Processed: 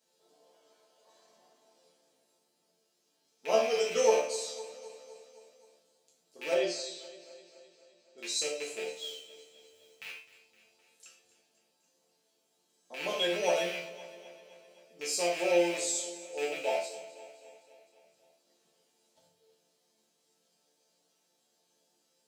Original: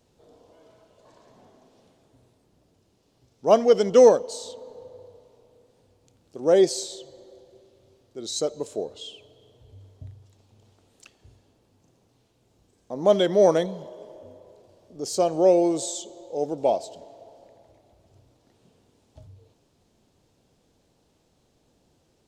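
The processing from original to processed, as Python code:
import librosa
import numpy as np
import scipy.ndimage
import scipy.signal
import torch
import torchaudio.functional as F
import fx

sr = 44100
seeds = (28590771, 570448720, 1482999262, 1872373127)

p1 = fx.rattle_buzz(x, sr, strikes_db=-39.0, level_db=-20.0)
p2 = fx.high_shelf(p1, sr, hz=3100.0, db=11.0)
p3 = fx.mod_noise(p2, sr, seeds[0], snr_db=17, at=(8.92, 10.06))
p4 = scipy.signal.sosfilt(scipy.signal.butter(2, 340.0, 'highpass', fs=sr, output='sos'), p3)
p5 = fx.resonator_bank(p4, sr, root=50, chord='minor', decay_s=0.28)
p6 = fx.air_absorb(p5, sr, metres=120.0, at=(6.54, 8.18))
p7 = p6 + fx.echo_feedback(p6, sr, ms=258, feedback_pct=60, wet_db=-17.0, dry=0)
p8 = fx.rev_gated(p7, sr, seeds[1], gate_ms=160, shape='falling', drr_db=-0.5)
y = p8 * 10.0 ** (1.5 / 20.0)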